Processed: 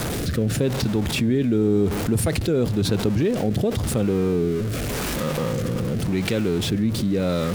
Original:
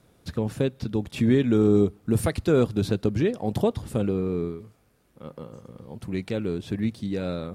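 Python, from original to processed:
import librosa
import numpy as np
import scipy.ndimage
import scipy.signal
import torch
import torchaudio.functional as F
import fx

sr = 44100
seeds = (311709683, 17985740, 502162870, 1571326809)

y = x + 0.5 * 10.0 ** (-35.0 / 20.0) * np.sign(x)
y = fx.rotary(y, sr, hz=0.9)
y = fx.env_flatten(y, sr, amount_pct=70)
y = y * 10.0 ** (-1.0 / 20.0)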